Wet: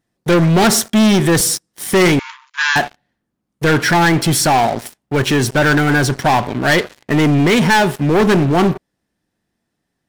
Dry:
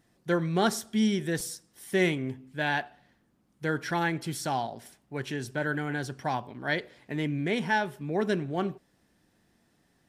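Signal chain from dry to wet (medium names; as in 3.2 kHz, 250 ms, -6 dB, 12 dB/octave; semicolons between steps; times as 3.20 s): waveshaping leveller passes 5; 2.19–2.76 s: brick-wall FIR band-pass 890–7300 Hz; trim +4 dB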